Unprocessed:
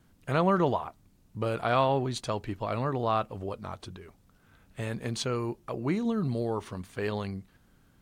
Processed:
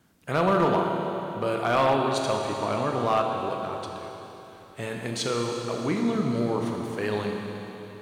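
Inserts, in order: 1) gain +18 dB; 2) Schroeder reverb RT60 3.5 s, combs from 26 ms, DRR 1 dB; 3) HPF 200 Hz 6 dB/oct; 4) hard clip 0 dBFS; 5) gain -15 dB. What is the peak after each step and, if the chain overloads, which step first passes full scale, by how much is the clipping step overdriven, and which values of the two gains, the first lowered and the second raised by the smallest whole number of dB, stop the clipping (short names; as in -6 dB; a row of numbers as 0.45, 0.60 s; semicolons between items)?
+6.5, +7.0, +6.5, 0.0, -15.0 dBFS; step 1, 6.5 dB; step 1 +11 dB, step 5 -8 dB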